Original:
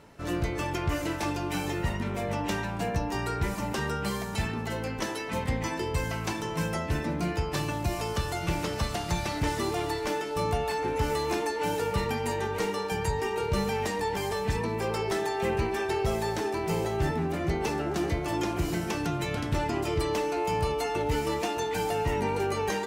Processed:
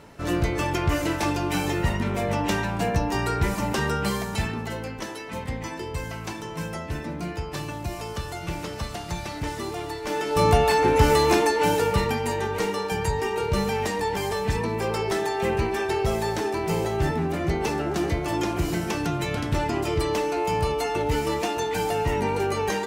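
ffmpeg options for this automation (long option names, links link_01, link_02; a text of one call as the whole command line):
ffmpeg -i in.wav -af "volume=17.5dB,afade=type=out:start_time=4.02:duration=0.99:silence=0.421697,afade=type=in:start_time=10.03:duration=0.45:silence=0.251189,afade=type=out:start_time=11.23:duration=1.01:silence=0.473151" out.wav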